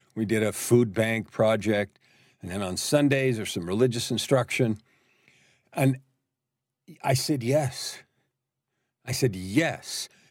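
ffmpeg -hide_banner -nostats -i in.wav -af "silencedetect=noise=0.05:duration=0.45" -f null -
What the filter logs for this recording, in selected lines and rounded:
silence_start: 1.84
silence_end: 2.47 | silence_duration: 0.63
silence_start: 4.73
silence_end: 5.77 | silence_duration: 1.05
silence_start: 5.93
silence_end: 7.04 | silence_duration: 1.11
silence_start: 7.89
silence_end: 9.09 | silence_duration: 1.19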